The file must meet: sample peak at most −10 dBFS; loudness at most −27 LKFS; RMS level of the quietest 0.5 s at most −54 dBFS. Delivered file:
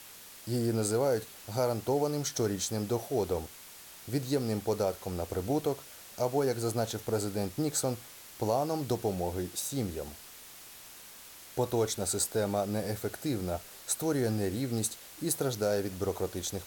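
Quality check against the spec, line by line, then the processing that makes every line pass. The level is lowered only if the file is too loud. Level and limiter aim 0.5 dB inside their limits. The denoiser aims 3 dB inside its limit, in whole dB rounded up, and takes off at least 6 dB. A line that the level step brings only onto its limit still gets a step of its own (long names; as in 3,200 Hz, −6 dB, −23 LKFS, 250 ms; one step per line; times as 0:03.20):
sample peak −15.5 dBFS: in spec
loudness −32.0 LKFS: in spec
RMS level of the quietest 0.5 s −50 dBFS: out of spec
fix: broadband denoise 7 dB, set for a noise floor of −50 dBFS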